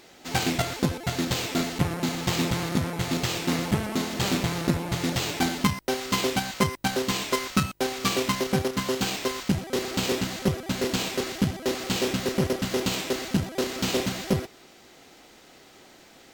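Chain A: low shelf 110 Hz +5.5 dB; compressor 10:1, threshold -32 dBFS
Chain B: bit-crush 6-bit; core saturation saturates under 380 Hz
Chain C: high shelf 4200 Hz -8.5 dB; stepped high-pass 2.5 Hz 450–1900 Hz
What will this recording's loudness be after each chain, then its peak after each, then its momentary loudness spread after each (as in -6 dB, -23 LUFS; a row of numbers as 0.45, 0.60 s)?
-36.5, -27.0, -28.0 LUFS; -18.5, -7.0, -7.5 dBFS; 6, 3, 6 LU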